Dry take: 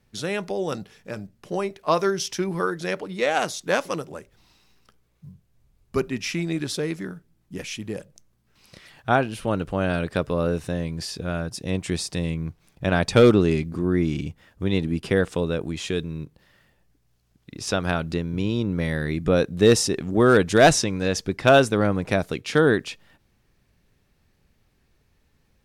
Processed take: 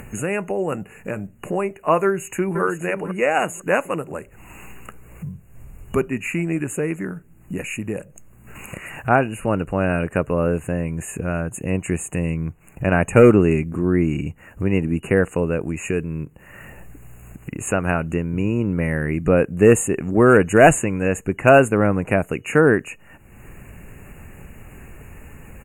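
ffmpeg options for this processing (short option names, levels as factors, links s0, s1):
-filter_complex "[0:a]asplit=2[s0][s1];[s1]afade=t=in:st=2.05:d=0.01,afade=t=out:st=2.61:d=0.01,aecho=0:1:500|1000|1500:0.375837|0.0751675|0.0150335[s2];[s0][s2]amix=inputs=2:normalize=0,afftfilt=real='re*(1-between(b*sr/4096,2900,6500))':imag='im*(1-between(b*sr/4096,2900,6500))':win_size=4096:overlap=0.75,acompressor=mode=upward:threshold=0.0562:ratio=2.5,volume=1.5"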